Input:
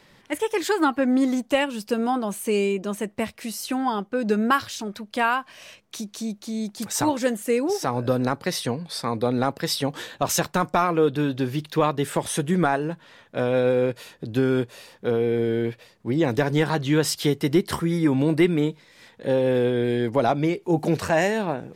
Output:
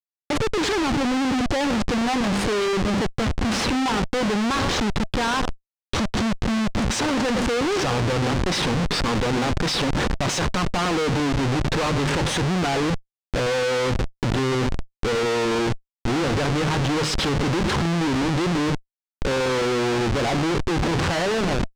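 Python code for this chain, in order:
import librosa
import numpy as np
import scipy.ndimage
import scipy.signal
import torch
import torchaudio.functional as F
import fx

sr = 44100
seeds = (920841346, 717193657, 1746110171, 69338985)

p1 = fx.hum_notches(x, sr, base_hz=50, count=5)
p2 = p1 + fx.echo_single(p1, sr, ms=109, db=-18.5, dry=0)
p3 = fx.schmitt(p2, sr, flips_db=-32.5)
p4 = fx.high_shelf(p3, sr, hz=4200.0, db=8.0)
p5 = fx.notch(p4, sr, hz=650.0, q=16.0)
p6 = fx.over_compress(p5, sr, threshold_db=-31.0, ratio=-1.0)
p7 = p5 + (p6 * librosa.db_to_amplitude(-1.0))
y = fx.air_absorb(p7, sr, metres=110.0)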